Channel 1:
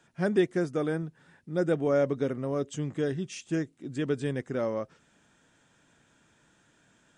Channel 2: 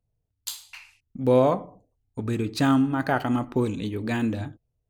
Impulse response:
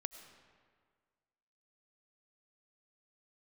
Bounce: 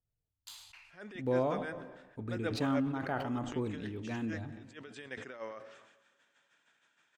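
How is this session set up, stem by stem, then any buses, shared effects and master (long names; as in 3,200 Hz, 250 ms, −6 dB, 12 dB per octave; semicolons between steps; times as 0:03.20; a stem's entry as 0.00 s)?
−1.0 dB, 0.75 s, send −10.5 dB, resonant band-pass 2,300 Hz, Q 0.79; tremolo with a sine in dB 6.4 Hz, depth 18 dB
−14.5 dB, 0.00 s, send −5.5 dB, high-shelf EQ 5,400 Hz −11.5 dB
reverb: on, RT60 1.8 s, pre-delay 60 ms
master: level that may fall only so fast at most 53 dB per second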